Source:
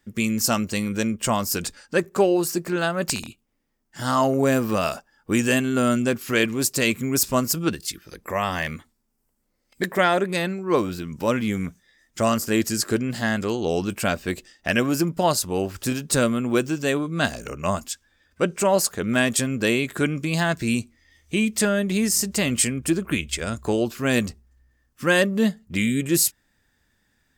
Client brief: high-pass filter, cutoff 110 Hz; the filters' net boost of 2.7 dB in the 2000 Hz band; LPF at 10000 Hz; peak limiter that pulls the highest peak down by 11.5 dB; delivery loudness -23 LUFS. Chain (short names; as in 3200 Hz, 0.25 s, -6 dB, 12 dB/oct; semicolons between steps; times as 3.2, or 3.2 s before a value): HPF 110 Hz; LPF 10000 Hz; bell 2000 Hz +3.5 dB; gain +3.5 dB; limiter -12 dBFS